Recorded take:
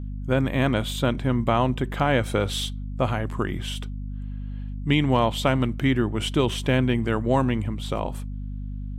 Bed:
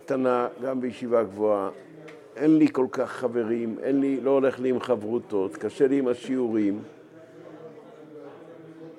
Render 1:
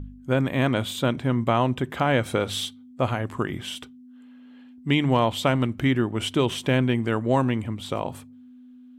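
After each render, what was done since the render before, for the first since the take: de-hum 50 Hz, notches 4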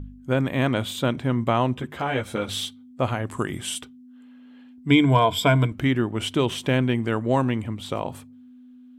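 1.77–2.49 ensemble effect; 3.31–3.81 bell 8900 Hz +14 dB 0.88 oct; 4.89–5.72 ripple EQ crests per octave 1.7, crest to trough 14 dB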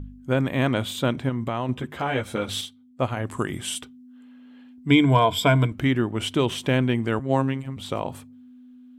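1.29–1.69 compressor 3:1, threshold -24 dBFS; 2.61–3.17 upward expander, over -33 dBFS; 7.19–7.77 robotiser 134 Hz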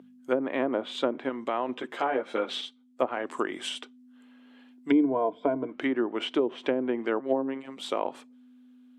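HPF 300 Hz 24 dB/oct; treble ducked by the level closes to 500 Hz, closed at -19.5 dBFS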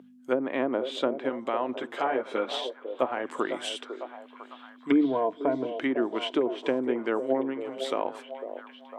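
delay with a stepping band-pass 0.502 s, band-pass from 490 Hz, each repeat 0.7 oct, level -6.5 dB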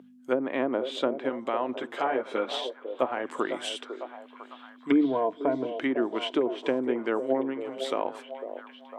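nothing audible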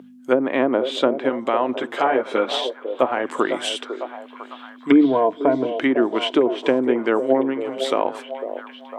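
gain +8.5 dB; limiter -3 dBFS, peak gain reduction 1 dB

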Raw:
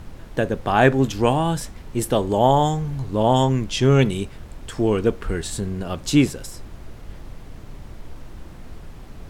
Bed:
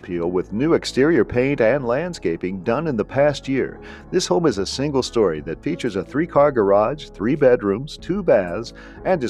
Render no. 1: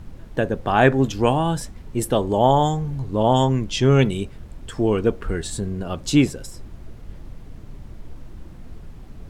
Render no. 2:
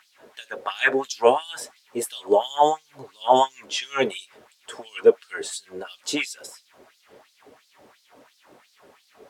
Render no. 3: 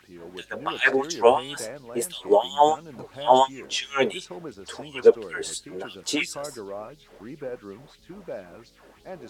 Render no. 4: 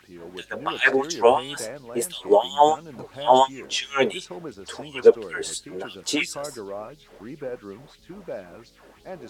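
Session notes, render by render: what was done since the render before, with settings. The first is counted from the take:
denoiser 6 dB, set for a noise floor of -40 dBFS
notch comb 170 Hz; LFO high-pass sine 2.9 Hz 420–4700 Hz
add bed -20.5 dB
gain +1.5 dB; limiter -3 dBFS, peak gain reduction 2.5 dB

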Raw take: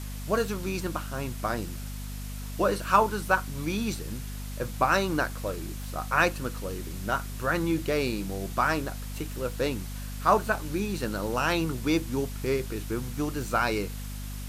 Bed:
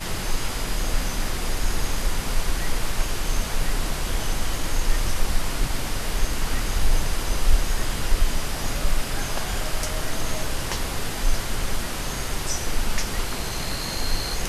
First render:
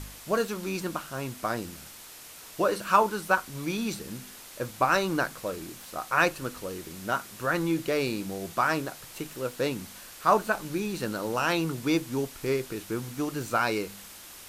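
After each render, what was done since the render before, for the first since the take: de-hum 50 Hz, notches 5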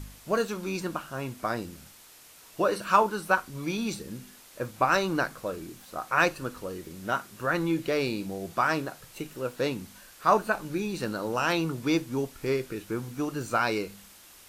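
noise print and reduce 6 dB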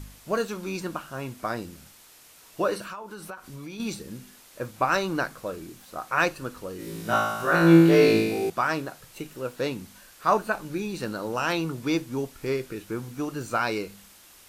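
2.84–3.8 compressor 8:1, threshold -35 dBFS; 6.77–8.5 flutter echo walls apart 3.1 m, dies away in 1.1 s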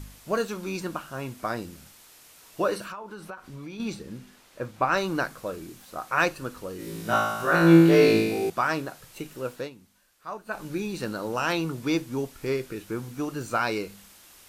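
2.92–4.97 high shelf 5900 Hz -11 dB; 9.53–10.62 dip -15 dB, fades 0.17 s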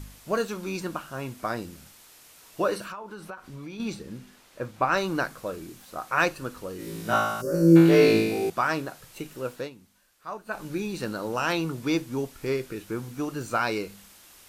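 7.41–7.76 spectral gain 620–4400 Hz -24 dB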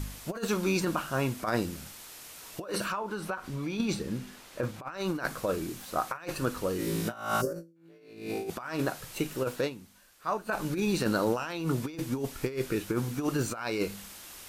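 negative-ratio compressor -31 dBFS, ratio -0.5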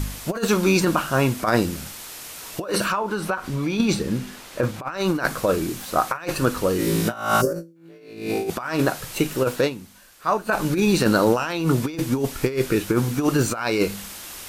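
gain +9.5 dB

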